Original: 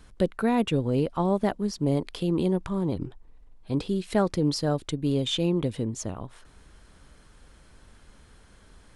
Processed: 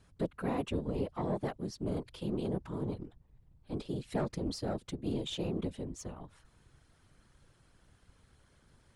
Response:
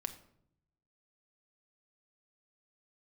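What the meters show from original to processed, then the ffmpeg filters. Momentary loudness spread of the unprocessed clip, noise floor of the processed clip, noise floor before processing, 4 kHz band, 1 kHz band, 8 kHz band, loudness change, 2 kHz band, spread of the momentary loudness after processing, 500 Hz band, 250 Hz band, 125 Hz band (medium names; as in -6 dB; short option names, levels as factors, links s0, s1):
7 LU, -67 dBFS, -55 dBFS, -11.5 dB, -10.5 dB, -11.0 dB, -10.5 dB, -10.5 dB, 8 LU, -10.0 dB, -10.5 dB, -10.0 dB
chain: -af "aeval=exprs='(tanh(5.62*val(0)+0.5)-tanh(0.5))/5.62':c=same,afftfilt=real='hypot(re,im)*cos(2*PI*random(0))':imag='hypot(re,im)*sin(2*PI*random(1))':win_size=512:overlap=0.75,volume=0.75"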